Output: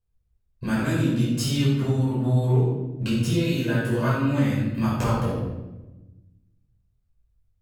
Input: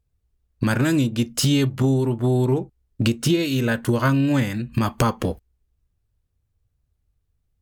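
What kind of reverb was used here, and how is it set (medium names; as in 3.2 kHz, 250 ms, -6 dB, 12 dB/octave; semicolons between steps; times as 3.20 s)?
simulated room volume 510 m³, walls mixed, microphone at 5.2 m; trim -15.5 dB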